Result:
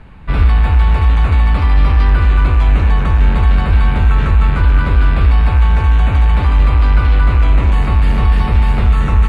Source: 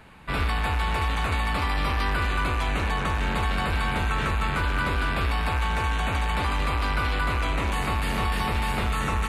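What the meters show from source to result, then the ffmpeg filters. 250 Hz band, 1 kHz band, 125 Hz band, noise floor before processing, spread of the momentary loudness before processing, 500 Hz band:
+9.5 dB, +4.0 dB, +16.0 dB, −27 dBFS, 1 LU, +5.5 dB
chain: -af "aemphasis=mode=reproduction:type=bsi,volume=4dB"

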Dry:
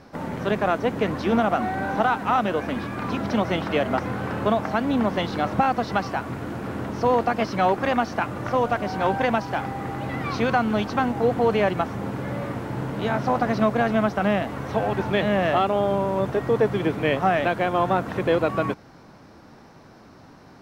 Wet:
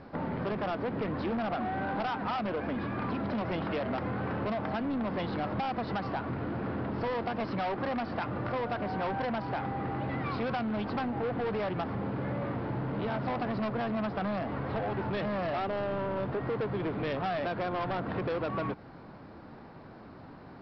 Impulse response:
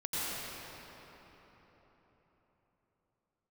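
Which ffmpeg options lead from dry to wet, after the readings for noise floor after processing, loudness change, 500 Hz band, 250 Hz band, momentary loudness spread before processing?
−49 dBFS, −9.5 dB, −10.0 dB, −8.0 dB, 8 LU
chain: -af "aemphasis=mode=reproduction:type=75kf,aresample=11025,asoftclip=type=tanh:threshold=-23.5dB,aresample=44100,acompressor=threshold=-30dB:ratio=6"

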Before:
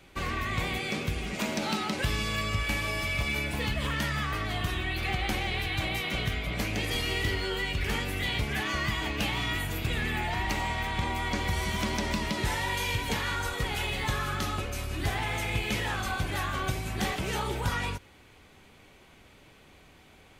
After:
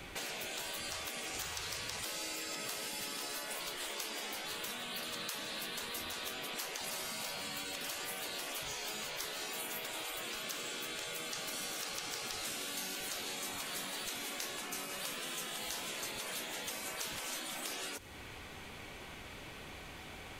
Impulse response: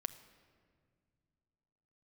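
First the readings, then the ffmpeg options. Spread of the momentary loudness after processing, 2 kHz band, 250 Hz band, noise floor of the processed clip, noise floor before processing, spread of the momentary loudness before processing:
8 LU, −11.5 dB, −15.5 dB, −49 dBFS, −56 dBFS, 2 LU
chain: -filter_complex "[0:a]afftfilt=real='re*lt(hypot(re,im),0.0447)':imag='im*lt(hypot(re,im),0.0447)':win_size=1024:overlap=0.75,acrossover=split=570|5300[link_01][link_02][link_03];[link_01]acompressor=threshold=-59dB:ratio=4[link_04];[link_02]acompressor=threshold=-54dB:ratio=4[link_05];[link_03]acompressor=threshold=-52dB:ratio=4[link_06];[link_04][link_05][link_06]amix=inputs=3:normalize=0,volume=8.5dB"

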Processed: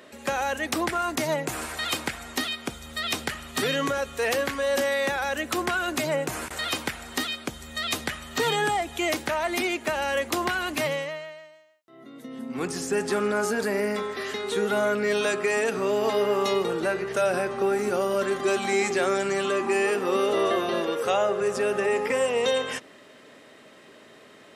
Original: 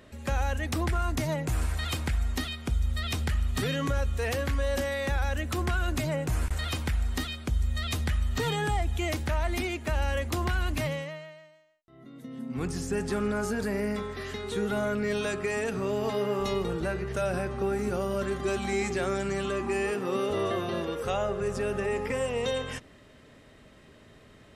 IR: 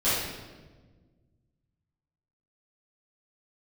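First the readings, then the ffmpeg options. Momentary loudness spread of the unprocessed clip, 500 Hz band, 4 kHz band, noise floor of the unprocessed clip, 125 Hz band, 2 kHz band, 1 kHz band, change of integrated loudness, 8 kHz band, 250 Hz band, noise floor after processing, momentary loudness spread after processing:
3 LU, +5.5 dB, +6.5 dB, −54 dBFS, −10.0 dB, +6.5 dB, +6.5 dB, +4.0 dB, +6.5 dB, +1.5 dB, −51 dBFS, 7 LU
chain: -af "highpass=300,volume=6.5dB"

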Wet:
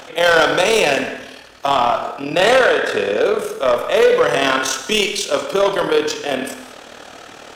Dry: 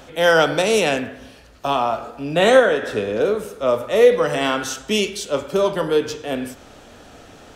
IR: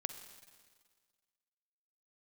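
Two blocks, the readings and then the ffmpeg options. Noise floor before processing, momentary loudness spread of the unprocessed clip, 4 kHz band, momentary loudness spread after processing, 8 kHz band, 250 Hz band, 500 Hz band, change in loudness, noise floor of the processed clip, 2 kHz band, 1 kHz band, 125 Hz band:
−45 dBFS, 12 LU, +5.0 dB, 9 LU, +5.0 dB, −0.5 dB, +1.5 dB, +2.5 dB, −39 dBFS, +4.5 dB, +4.5 dB, −3.0 dB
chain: -filter_complex "[0:a]tremolo=f=38:d=0.667,asplit=2[link_01][link_02];[link_02]highpass=frequency=720:poles=1,volume=19dB,asoftclip=type=tanh:threshold=-3.5dB[link_03];[link_01][link_03]amix=inputs=2:normalize=0,lowpass=frequency=6900:poles=1,volume=-6dB[link_04];[1:a]atrim=start_sample=2205,afade=type=out:start_time=0.29:duration=0.01,atrim=end_sample=13230[link_05];[link_04][link_05]afir=irnorm=-1:irlink=0"

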